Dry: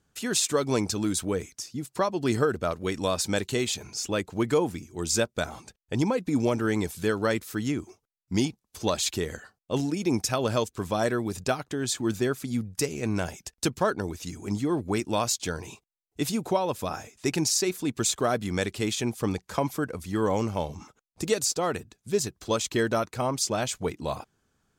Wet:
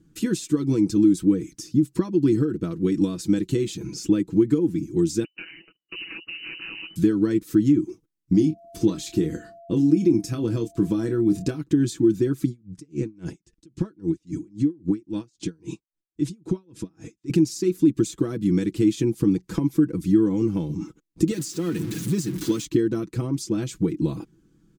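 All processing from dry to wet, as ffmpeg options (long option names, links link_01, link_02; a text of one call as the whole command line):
ffmpeg -i in.wav -filter_complex "[0:a]asettb=1/sr,asplit=3[link_01][link_02][link_03];[link_01]atrim=end=5.244[link_04];[link_02]atrim=start=5.24:end=6.96,asetpts=PTS-STARTPTS,afade=type=in:duration=0.004:curve=qsin,afade=type=out:start_time=1.716:duration=0.004:curve=qsin,aeval=exprs='val(0)*sin(2*PI*86*n/s)':channel_layout=same,asoftclip=type=hard:threshold=-29dB,lowpass=frequency=2600:width_type=q:width=0.5098,lowpass=frequency=2600:width_type=q:width=0.6013,lowpass=frequency=2600:width_type=q:width=0.9,lowpass=frequency=2600:width_type=q:width=2.563,afreqshift=-3000[link_05];[link_03]atrim=start=6.956[link_06];[link_04][link_05]acrossfade=duration=0.004:curve1=hsin:curve2=qsin[link_07];[link_07][link_06]acrossfade=duration=0.004:curve1=qsin:curve2=hsin,asettb=1/sr,asplit=3[link_08][link_09][link_10];[link_08]atrim=end=8.344[link_11];[link_09]atrim=start=8.34:end=11.59,asetpts=PTS-STARTPTS,afade=type=in:duration=0.004:curve=qsin,afade=type=out:start_time=3.246:duration=0.004:curve=qsin,aeval=exprs='val(0)+0.0141*sin(2*PI*680*n/s)':channel_layout=same,asplit=2[link_12][link_13];[link_13]adelay=26,volume=-9dB[link_14];[link_12][link_14]amix=inputs=2:normalize=0,atrim=end_sample=143325[link_15];[link_10]atrim=start=11.586[link_16];[link_11][link_15]acrossfade=duration=0.004:curve1=hsin:curve2=qsin[link_17];[link_17][link_16]acrossfade=duration=0.004:curve1=qsin:curve2=hsin,asettb=1/sr,asplit=3[link_18][link_19][link_20];[link_18]atrim=end=12.474[link_21];[link_19]atrim=start=12.47:end=17.3,asetpts=PTS-STARTPTS,afade=type=in:duration=0.004:curve=qsin,afade=type=out:start_time=4.826:duration=0.004:curve=qsin,lowpass=frequency=9500:width=0.5412,lowpass=frequency=9500:width=1.3066,acompressor=threshold=-31dB:ratio=6:attack=3.2:release=140:knee=1:detection=peak,aeval=exprs='val(0)*pow(10,-35*(0.5-0.5*cos(2*PI*3.7*n/s))/20)':channel_layout=same[link_22];[link_20]atrim=start=17.296[link_23];[link_21][link_22]acrossfade=duration=0.004:curve1=hsin:curve2=qsin[link_24];[link_24][link_23]acrossfade=duration=0.004:curve1=qsin:curve2=hsin,asettb=1/sr,asplit=3[link_25][link_26][link_27];[link_25]atrim=end=21.314[link_28];[link_26]atrim=start=21.31:end=22.65,asetpts=PTS-STARTPTS,afade=type=in:duration=0.004:curve=qsin,afade=type=out:start_time=1.336:duration=0.004:curve=qsin,aeval=exprs='val(0)+0.5*0.0398*sgn(val(0))':channel_layout=same,highpass=150,equalizer=frequency=440:width=0.56:gain=-6.5[link_29];[link_27]atrim=start=22.646[link_30];[link_28][link_29]acrossfade=duration=0.004:curve1=hsin:curve2=qsin[link_31];[link_31][link_30]acrossfade=duration=0.004:curve1=qsin:curve2=hsin,aecho=1:1:6.1:0.66,acompressor=threshold=-31dB:ratio=6,lowshelf=frequency=450:width_type=q:width=3:gain=12.5,volume=-1.5dB" out.wav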